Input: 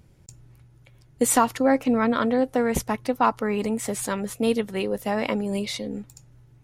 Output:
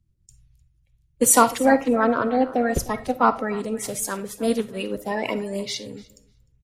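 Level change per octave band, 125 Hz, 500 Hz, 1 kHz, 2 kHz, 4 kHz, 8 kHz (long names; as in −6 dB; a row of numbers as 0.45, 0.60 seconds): −1.0, +1.5, +3.0, +3.0, +1.5, +6.0 decibels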